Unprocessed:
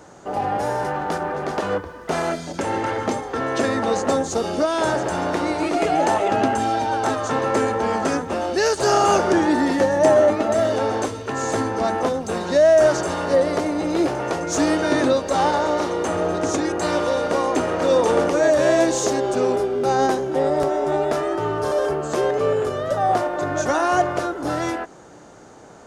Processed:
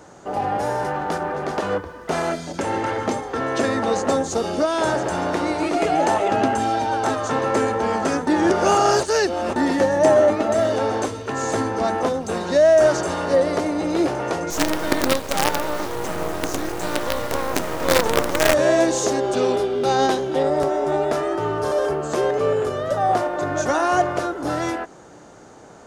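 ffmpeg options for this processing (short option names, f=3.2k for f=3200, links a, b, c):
-filter_complex "[0:a]asettb=1/sr,asplit=3[a][b][c];[a]atrim=end=14.504[d];[b]atrim=start=14.5:end=18.54,asetpts=PTS-STARTPTS,afade=t=in:d=0.004:c=qsin,afade=t=out:st=4.036:d=0.004:c=qsin,acrusher=bits=3:dc=4:mix=0:aa=0.000001[e];[c]atrim=start=18.536[f];[d][e]acrossfade=d=0.004:c1=hsin:c2=qsin[g];[g][f]acrossfade=d=0.004:c1=qsin:c2=hsin,asettb=1/sr,asplit=3[h][i][j];[h]atrim=end=19.334[k];[i]atrim=start=19.33:end=20.43,asetpts=PTS-STARTPTS,afade=t=in:d=0.004:c=qsin,afade=t=out:st=1.096:d=0.004:c=qsin,equalizer=f=3.5k:w=1.6:g=8.5[l];[j]atrim=start=20.426[m];[k][l]acrossfade=d=0.004:c1=hsin:c2=qsin[n];[n][m]acrossfade=d=0.004:c1=qsin:c2=hsin,asplit=3[o][p][q];[o]atrim=end=8.272[r];[p]atrim=start=8.268:end=9.562,asetpts=PTS-STARTPTS,areverse[s];[q]atrim=start=9.558[t];[r][s]acrossfade=d=0.004:c1=hsin:c2=hsin[u];[u][t]acrossfade=d=0.004:c1=hsin:c2=hsin"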